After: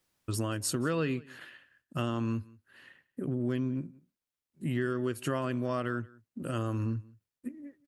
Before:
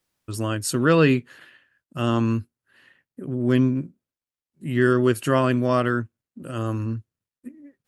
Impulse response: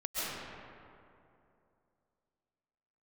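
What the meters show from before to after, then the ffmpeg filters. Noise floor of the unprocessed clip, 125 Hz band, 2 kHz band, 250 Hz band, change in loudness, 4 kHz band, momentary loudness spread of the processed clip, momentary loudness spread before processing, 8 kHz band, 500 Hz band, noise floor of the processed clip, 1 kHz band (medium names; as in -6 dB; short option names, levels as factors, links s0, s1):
under -85 dBFS, -9.0 dB, -12.0 dB, -10.5 dB, -11.0 dB, -8.5 dB, 14 LU, 16 LU, -5.0 dB, -12.0 dB, under -85 dBFS, -11.5 dB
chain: -af "acompressor=threshold=0.0355:ratio=5,aecho=1:1:180:0.0668"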